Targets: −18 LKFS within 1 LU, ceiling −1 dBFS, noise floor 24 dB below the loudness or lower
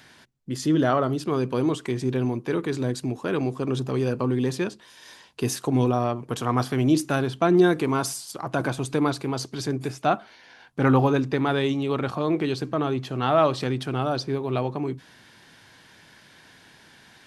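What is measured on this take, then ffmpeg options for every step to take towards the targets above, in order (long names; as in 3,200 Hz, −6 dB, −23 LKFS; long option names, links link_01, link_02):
integrated loudness −25.0 LKFS; sample peak −6.0 dBFS; target loudness −18.0 LKFS
→ -af "volume=7dB,alimiter=limit=-1dB:level=0:latency=1"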